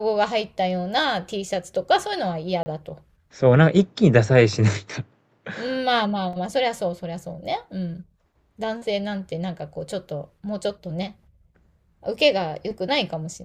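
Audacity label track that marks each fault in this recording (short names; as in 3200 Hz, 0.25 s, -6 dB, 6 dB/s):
2.630000	2.660000	gap 30 ms
6.330000	6.330000	gap 2.8 ms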